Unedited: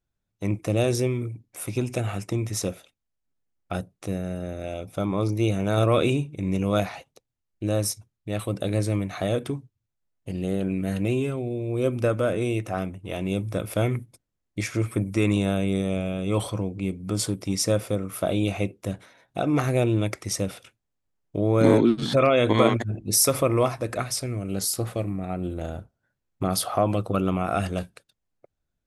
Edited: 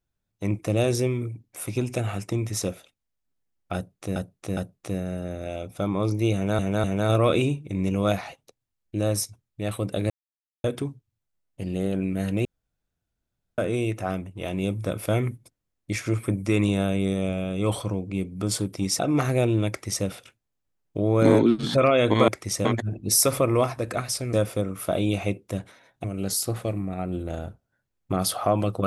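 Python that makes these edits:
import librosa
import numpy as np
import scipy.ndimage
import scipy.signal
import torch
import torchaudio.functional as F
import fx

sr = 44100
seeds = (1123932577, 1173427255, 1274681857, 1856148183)

y = fx.edit(x, sr, fx.repeat(start_s=3.75, length_s=0.41, count=3),
    fx.repeat(start_s=5.52, length_s=0.25, count=3),
    fx.silence(start_s=8.78, length_s=0.54),
    fx.room_tone_fill(start_s=11.13, length_s=1.13),
    fx.move(start_s=17.67, length_s=1.71, to_s=24.35),
    fx.duplicate(start_s=20.08, length_s=0.37, to_s=22.67), tone=tone)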